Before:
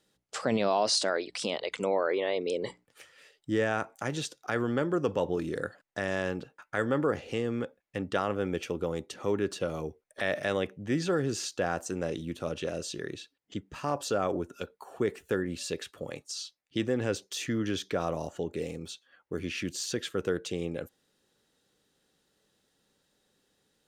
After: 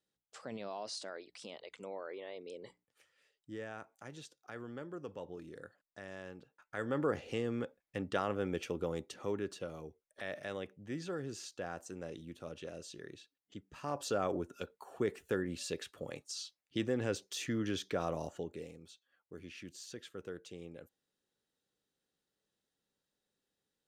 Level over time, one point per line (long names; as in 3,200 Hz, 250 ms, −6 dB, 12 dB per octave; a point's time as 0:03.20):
0:06.40 −16.5 dB
0:07.06 −5 dB
0:08.98 −5 dB
0:09.80 −12 dB
0:13.63 −12 dB
0:14.07 −5 dB
0:18.30 −5 dB
0:18.78 −15 dB